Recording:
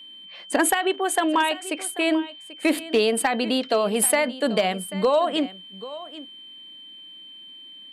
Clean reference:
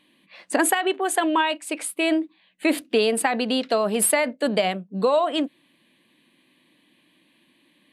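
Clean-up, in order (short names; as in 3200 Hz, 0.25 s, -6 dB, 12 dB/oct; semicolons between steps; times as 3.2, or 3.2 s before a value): clip repair -11.5 dBFS; notch 3100 Hz, Q 30; inverse comb 0.788 s -16.5 dB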